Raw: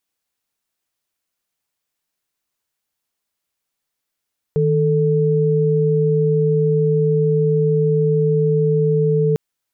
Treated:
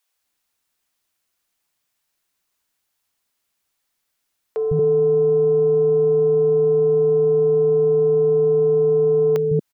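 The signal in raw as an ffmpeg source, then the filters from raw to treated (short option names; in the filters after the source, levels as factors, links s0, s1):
-f lavfi -i "aevalsrc='0.158*(sin(2*PI*155.56*t)+sin(2*PI*440*t))':d=4.8:s=44100"
-filter_complex "[0:a]acontrast=24,acrossover=split=150|450[s0][s1][s2];[s0]adelay=150[s3];[s1]adelay=230[s4];[s3][s4][s2]amix=inputs=3:normalize=0"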